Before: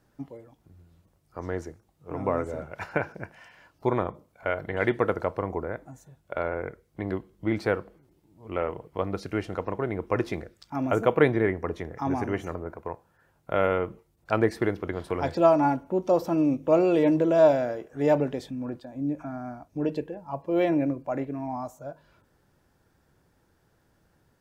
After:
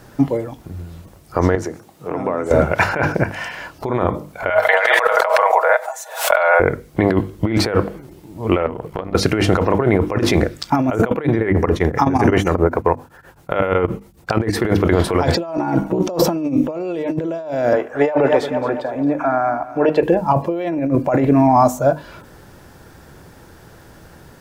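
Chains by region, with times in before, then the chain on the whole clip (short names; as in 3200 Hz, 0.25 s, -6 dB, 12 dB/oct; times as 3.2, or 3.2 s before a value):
1.55–2.51 HPF 170 Hz + compressor 3:1, threshold -46 dBFS
4.5–6.6 steep high-pass 570 Hz 48 dB/oct + comb 6.3 ms, depth 56% + backwards sustainer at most 110 dB/s
8.66–9.15 compressor 20:1, threshold -41 dBFS + AM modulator 64 Hz, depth 45%
11.08–14.65 notch 640 Hz, Q 14 + beating tremolo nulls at 7.7 Hz
15.57–15.99 AM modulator 64 Hz, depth 80% + comb 6.3 ms, depth 86%
17.73–20.03 three-band isolator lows -16 dB, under 500 Hz, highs -14 dB, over 2500 Hz + feedback echo 0.221 s, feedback 49%, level -16 dB
whole clip: notches 50/100/150/200/250/300 Hz; negative-ratio compressor -34 dBFS, ratio -1; maximiser +18.5 dB; gain -1 dB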